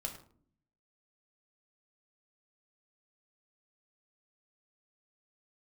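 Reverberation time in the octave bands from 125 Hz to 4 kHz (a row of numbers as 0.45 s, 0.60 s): 1.0 s, 0.90 s, 0.60 s, 0.45 s, 0.35 s, 0.35 s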